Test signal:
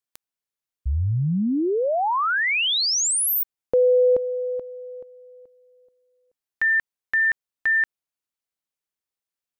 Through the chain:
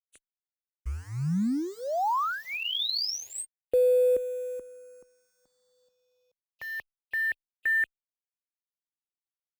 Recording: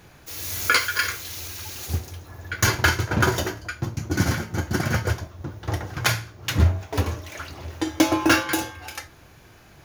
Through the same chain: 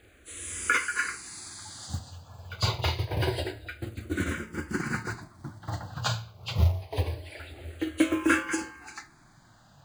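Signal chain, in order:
hearing-aid frequency compression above 2,500 Hz 1.5 to 1
log-companded quantiser 6 bits
frequency shifter mixed with the dry sound −0.26 Hz
level −4 dB

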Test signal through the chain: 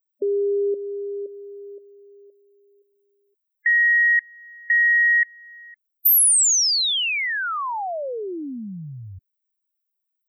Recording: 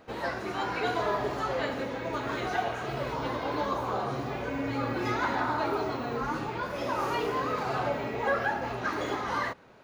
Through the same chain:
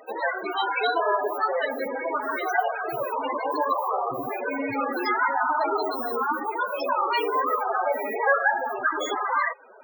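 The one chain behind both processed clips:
RIAA equalisation recording
in parallel at −2 dB: downward compressor, threshold −41 dBFS
on the sum: spectral peaks only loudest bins 16
level +6.5 dB

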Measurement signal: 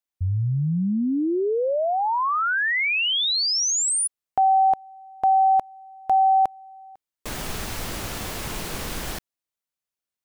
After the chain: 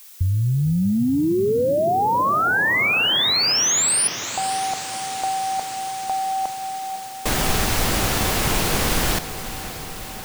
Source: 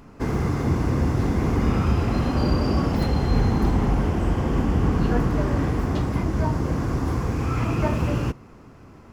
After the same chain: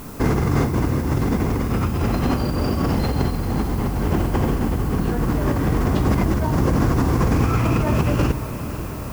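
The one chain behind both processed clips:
compressor whose output falls as the input rises −26 dBFS, ratio −1
background noise blue −50 dBFS
feedback delay with all-pass diffusion 542 ms, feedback 74%, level −13 dB
level +6 dB

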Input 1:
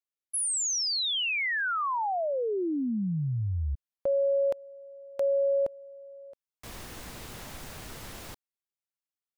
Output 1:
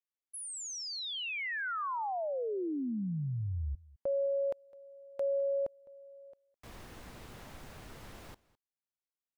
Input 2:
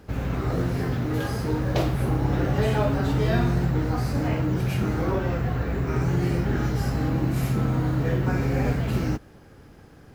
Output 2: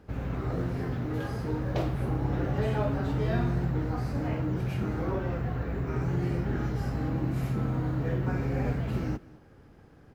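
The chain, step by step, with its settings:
high-shelf EQ 3,500 Hz −8.5 dB
single-tap delay 208 ms −22 dB
level −5.5 dB

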